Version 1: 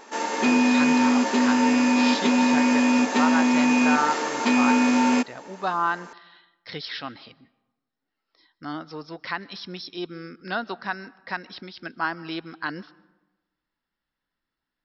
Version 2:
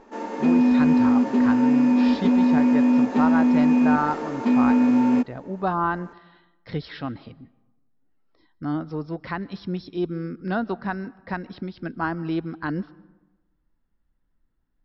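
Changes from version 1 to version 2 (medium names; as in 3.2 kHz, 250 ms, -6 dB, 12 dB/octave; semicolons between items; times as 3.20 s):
background -6.5 dB; master: add tilt EQ -4.5 dB/octave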